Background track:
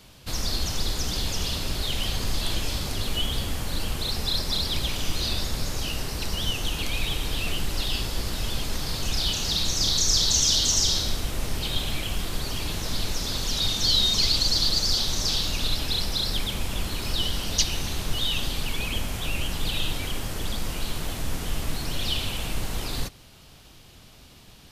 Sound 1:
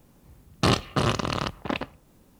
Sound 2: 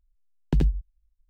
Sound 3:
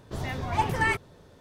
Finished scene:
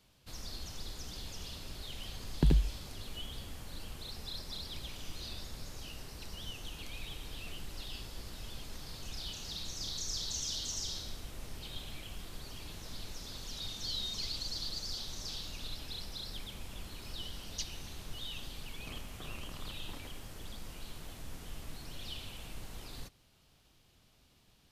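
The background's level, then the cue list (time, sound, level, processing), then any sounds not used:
background track -16.5 dB
1.9 add 2 -4 dB
18.24 add 1 -15 dB + compressor, threshold -32 dBFS
not used: 3

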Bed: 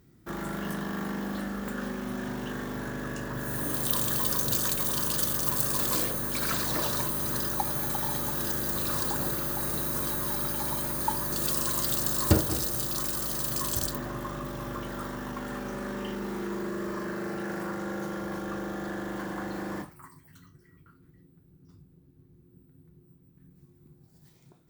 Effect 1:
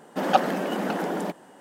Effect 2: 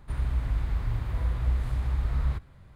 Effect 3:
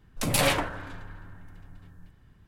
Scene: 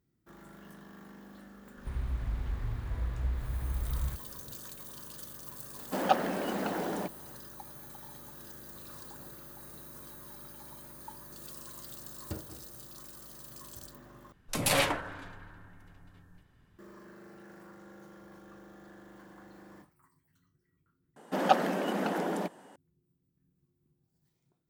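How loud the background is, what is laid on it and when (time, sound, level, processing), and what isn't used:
bed -18 dB
1.77 add 2 -6.5 dB
5.76 add 1 -6 dB
14.32 replace with 3 -2.5 dB + low shelf 140 Hz -7.5 dB
21.16 replace with 1 -4 dB

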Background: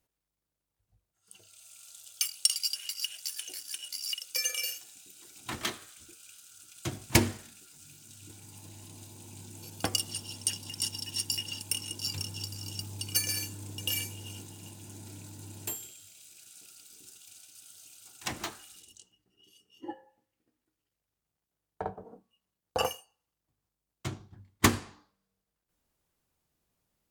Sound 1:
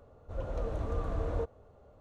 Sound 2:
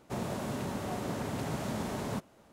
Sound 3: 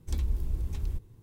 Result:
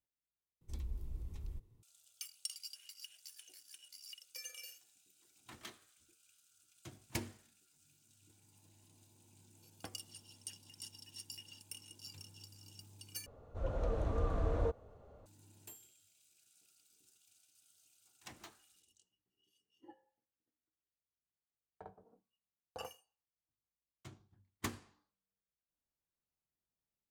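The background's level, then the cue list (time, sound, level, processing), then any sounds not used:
background -17.5 dB
0.61 replace with 3 -13 dB + notch 1600 Hz, Q 10
13.26 replace with 1 -1 dB
not used: 2

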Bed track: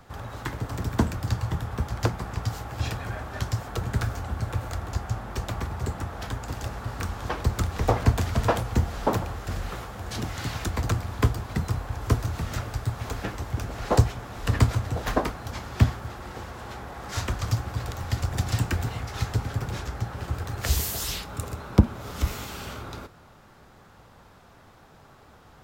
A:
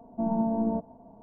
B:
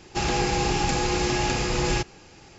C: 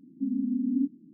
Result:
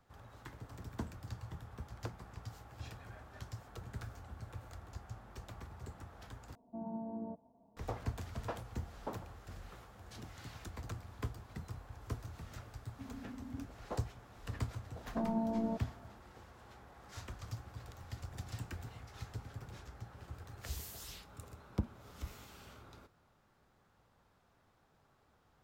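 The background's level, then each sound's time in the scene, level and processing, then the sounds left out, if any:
bed track -18.5 dB
6.55 replace with A -15.5 dB + HPF 41 Hz
12.78 add C -18 dB + HPF 230 Hz
14.97 add A -8 dB
not used: B

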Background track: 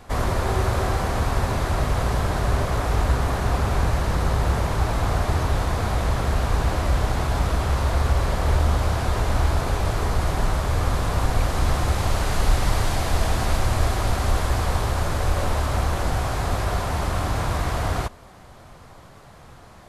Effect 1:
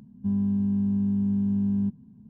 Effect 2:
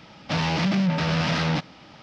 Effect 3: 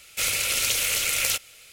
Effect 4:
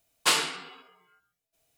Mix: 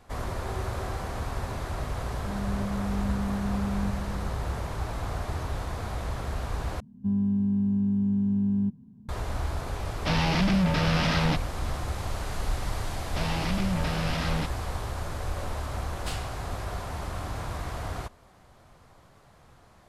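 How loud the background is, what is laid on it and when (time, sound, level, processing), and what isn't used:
background track -10 dB
2.01 add 1 -12 dB + lo-fi delay 80 ms, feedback 80%, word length 10-bit, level -14 dB
6.8 replace with 1 -0.5 dB
9.76 add 2 -1.5 dB
12.86 add 2 -7 dB
15.8 add 4 -16 dB
not used: 3

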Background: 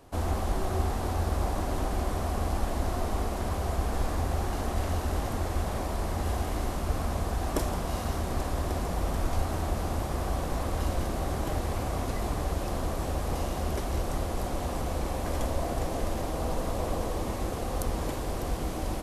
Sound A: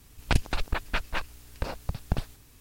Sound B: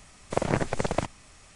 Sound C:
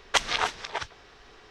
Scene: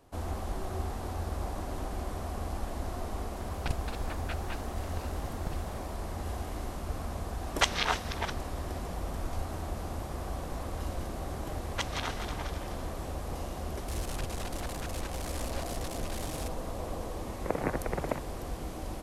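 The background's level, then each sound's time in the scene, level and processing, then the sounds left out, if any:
background -6.5 dB
3.35 add A -11 dB
7.47 add C -3 dB
11.64 add C -11.5 dB + regenerating reverse delay 0.125 s, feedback 68%, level -7 dB
13.88 add A -17 dB + delta modulation 64 kbps, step -17 dBFS
17.13 add B -5 dB + mistuned SSB -52 Hz 180–2500 Hz

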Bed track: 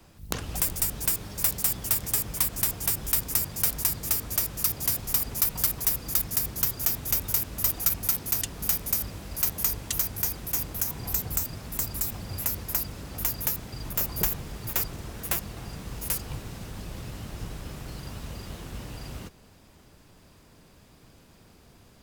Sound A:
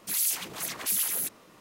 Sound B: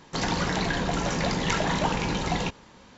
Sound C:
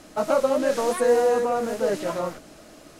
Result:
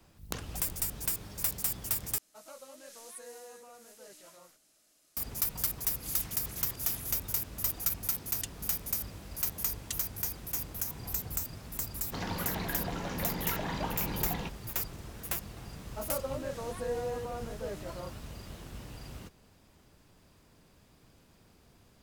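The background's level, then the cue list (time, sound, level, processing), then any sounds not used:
bed track -6.5 dB
2.18 replace with C -12 dB + pre-emphasis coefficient 0.9
5.89 add A -14 dB + auto swell 0.101 s
11.99 add B -9.5 dB + air absorption 79 m
15.8 add C -15.5 dB

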